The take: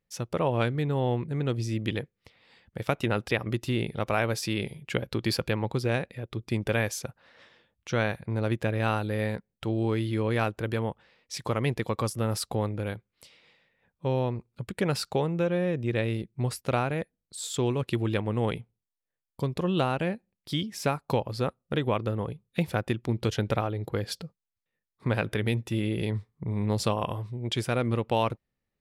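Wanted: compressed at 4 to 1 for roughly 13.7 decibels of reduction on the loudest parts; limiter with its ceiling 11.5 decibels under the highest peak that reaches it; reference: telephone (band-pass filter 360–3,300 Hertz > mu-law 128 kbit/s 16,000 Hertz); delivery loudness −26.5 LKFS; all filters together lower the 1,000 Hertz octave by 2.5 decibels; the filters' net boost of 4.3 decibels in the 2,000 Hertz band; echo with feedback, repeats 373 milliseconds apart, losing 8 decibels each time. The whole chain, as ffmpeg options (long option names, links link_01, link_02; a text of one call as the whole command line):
ffmpeg -i in.wav -af "equalizer=frequency=1000:width_type=o:gain=-5.5,equalizer=frequency=2000:width_type=o:gain=8,acompressor=threshold=-38dB:ratio=4,alimiter=level_in=7.5dB:limit=-24dB:level=0:latency=1,volume=-7.5dB,highpass=360,lowpass=3300,aecho=1:1:373|746|1119|1492|1865:0.398|0.159|0.0637|0.0255|0.0102,volume=20.5dB" -ar 16000 -c:a pcm_mulaw out.wav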